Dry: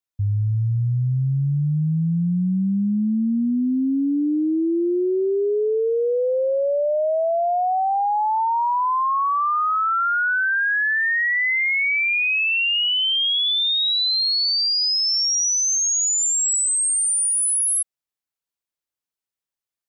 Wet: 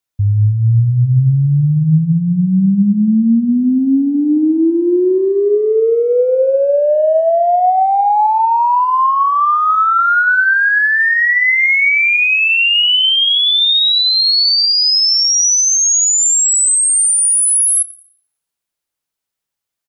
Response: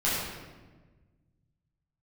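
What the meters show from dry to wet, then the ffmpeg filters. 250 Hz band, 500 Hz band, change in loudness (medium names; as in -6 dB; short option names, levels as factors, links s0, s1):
+8.5 dB, +8.0 dB, +8.0 dB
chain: -filter_complex "[0:a]asplit=2[s0][s1];[s1]adelay=280,highpass=300,lowpass=3400,asoftclip=type=hard:threshold=0.0473,volume=0.0447[s2];[s0][s2]amix=inputs=2:normalize=0,asplit=2[s3][s4];[1:a]atrim=start_sample=2205[s5];[s4][s5]afir=irnorm=-1:irlink=0,volume=0.0708[s6];[s3][s6]amix=inputs=2:normalize=0,volume=2.37"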